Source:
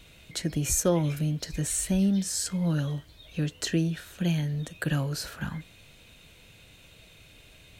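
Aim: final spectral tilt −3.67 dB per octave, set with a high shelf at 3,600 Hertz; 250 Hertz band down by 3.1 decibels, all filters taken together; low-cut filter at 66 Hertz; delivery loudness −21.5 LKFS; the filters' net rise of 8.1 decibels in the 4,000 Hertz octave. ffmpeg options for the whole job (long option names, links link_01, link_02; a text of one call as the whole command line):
ffmpeg -i in.wav -af "highpass=66,equalizer=frequency=250:width_type=o:gain=-5.5,highshelf=frequency=3600:gain=5,equalizer=frequency=4000:width_type=o:gain=6.5,volume=5.5dB" out.wav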